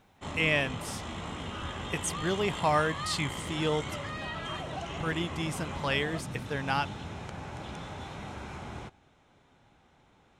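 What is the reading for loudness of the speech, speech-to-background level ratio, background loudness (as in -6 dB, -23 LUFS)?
-31.5 LUFS, 7.0 dB, -38.5 LUFS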